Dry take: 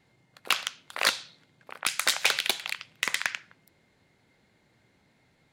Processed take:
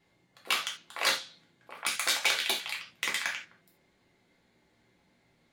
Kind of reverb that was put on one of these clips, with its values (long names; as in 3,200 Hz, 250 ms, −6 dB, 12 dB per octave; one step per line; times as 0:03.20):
reverb whose tail is shaped and stops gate 110 ms falling, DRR −2.5 dB
level −6.5 dB